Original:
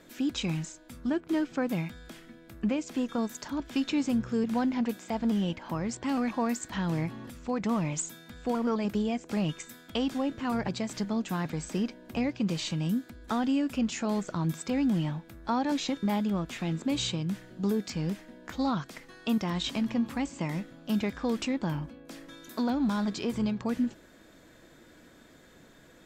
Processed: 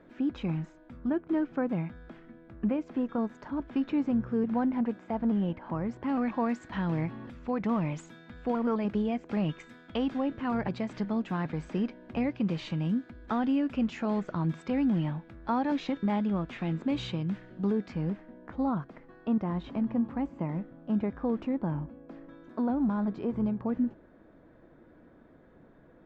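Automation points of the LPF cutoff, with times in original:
5.97 s 1500 Hz
6.4 s 2400 Hz
17.55 s 2400 Hz
18.56 s 1100 Hz

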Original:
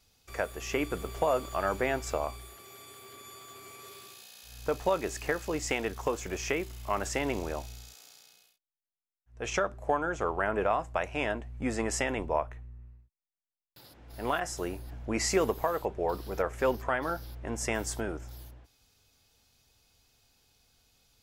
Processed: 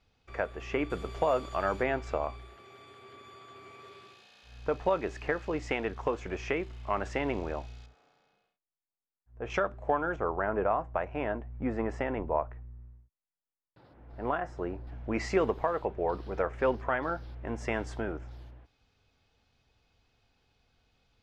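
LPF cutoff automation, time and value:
2600 Hz
from 0.9 s 4600 Hz
from 1.83 s 2800 Hz
from 7.86 s 1300 Hz
from 9.5 s 3100 Hz
from 10.16 s 1500 Hz
from 14.87 s 2800 Hz

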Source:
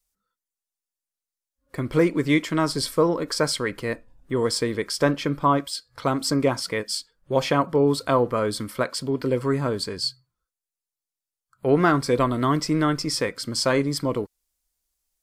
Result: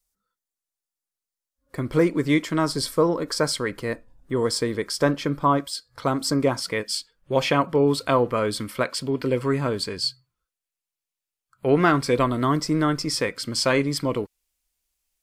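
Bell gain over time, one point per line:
bell 2600 Hz 0.79 oct
6.46 s -2.5 dB
6.98 s +5.5 dB
12.11 s +5.5 dB
12.65 s -5 dB
13.46 s +6 dB

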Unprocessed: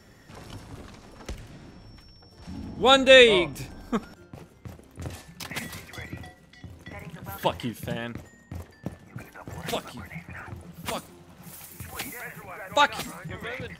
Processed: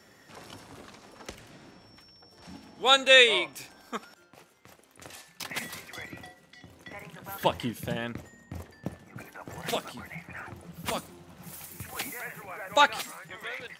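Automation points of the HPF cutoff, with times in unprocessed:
HPF 6 dB/oct
350 Hz
from 2.57 s 1100 Hz
from 5.4 s 340 Hz
from 7.41 s 89 Hz
from 9.03 s 200 Hz
from 10.68 s 61 Hz
from 11.83 s 210 Hz
from 12.98 s 900 Hz

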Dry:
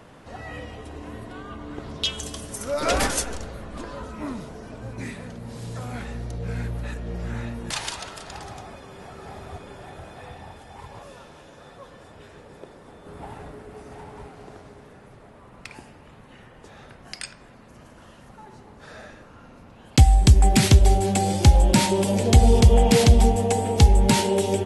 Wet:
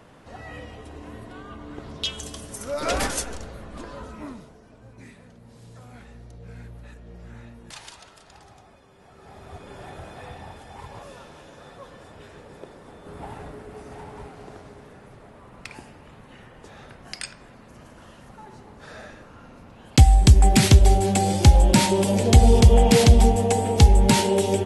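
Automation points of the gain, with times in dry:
4.12 s -2.5 dB
4.61 s -12 dB
8.98 s -12 dB
9.8 s +1 dB

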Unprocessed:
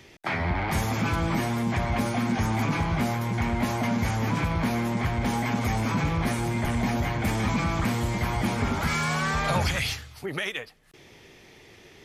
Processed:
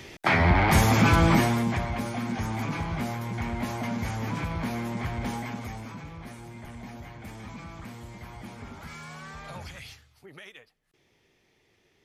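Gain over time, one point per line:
1.32 s +6.5 dB
1.95 s -5 dB
5.27 s -5 dB
6.03 s -16 dB

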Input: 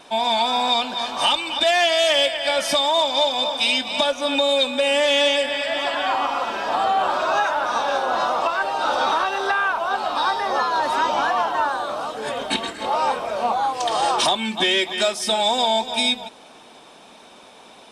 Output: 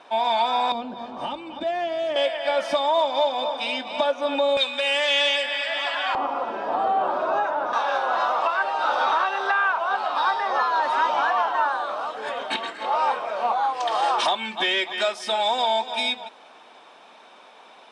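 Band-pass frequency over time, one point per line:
band-pass, Q 0.61
1000 Hz
from 0.72 s 210 Hz
from 2.16 s 710 Hz
from 4.57 s 2100 Hz
from 6.15 s 420 Hz
from 7.73 s 1300 Hz

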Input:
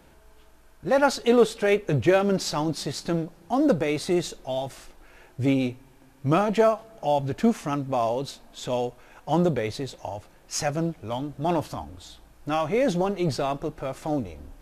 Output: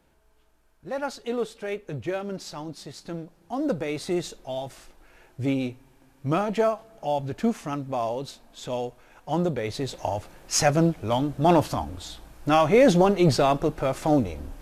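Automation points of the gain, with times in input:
2.9 s -10 dB
4.1 s -3 dB
9.56 s -3 dB
10.01 s +6 dB

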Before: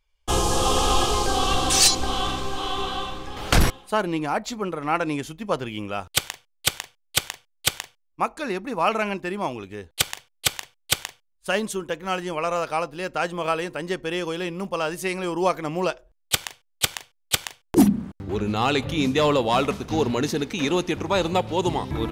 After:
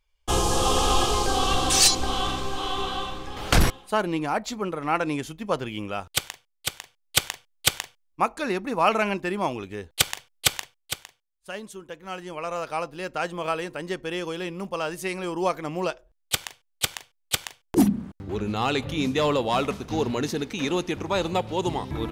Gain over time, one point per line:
5.88 s -1 dB
6.77 s -7.5 dB
7.18 s +1 dB
10.59 s +1 dB
11.03 s -12 dB
11.7 s -12 dB
12.86 s -3 dB

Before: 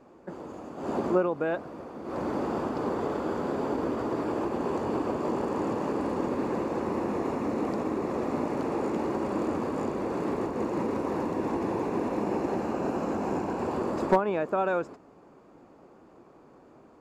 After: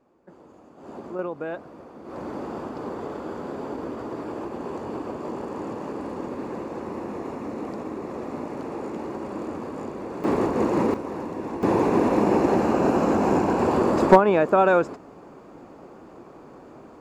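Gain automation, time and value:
-9.5 dB
from 1.19 s -3 dB
from 10.24 s +7.5 dB
from 10.94 s -2 dB
from 11.63 s +9 dB

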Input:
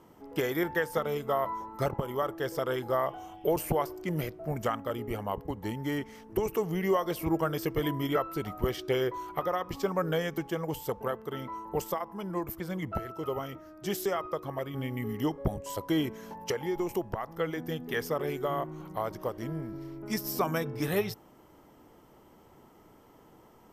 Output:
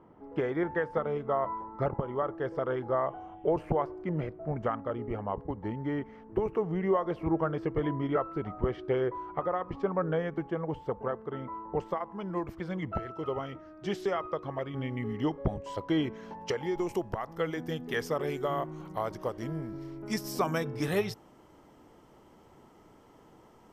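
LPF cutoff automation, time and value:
11.7 s 1600 Hz
12.35 s 3600 Hz
16.16 s 3600 Hz
17.03 s 9400 Hz

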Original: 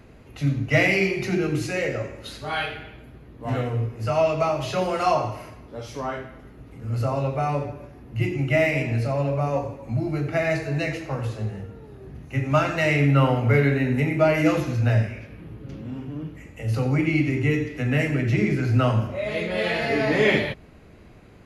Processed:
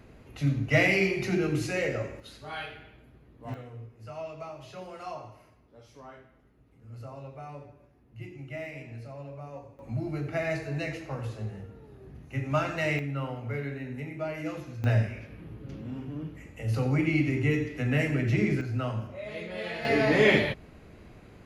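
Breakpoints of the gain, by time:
-3.5 dB
from 2.2 s -10.5 dB
from 3.54 s -18 dB
from 9.79 s -7 dB
from 12.99 s -15 dB
from 14.84 s -4 dB
from 18.61 s -11 dB
from 19.85 s -1.5 dB

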